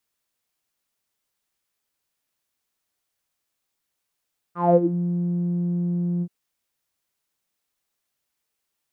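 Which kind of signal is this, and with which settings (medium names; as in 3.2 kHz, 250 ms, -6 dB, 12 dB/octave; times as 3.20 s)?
synth note saw F3 12 dB/octave, low-pass 230 Hz, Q 9.9, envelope 2.5 oct, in 0.39 s, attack 192 ms, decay 0.06 s, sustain -10 dB, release 0.06 s, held 1.67 s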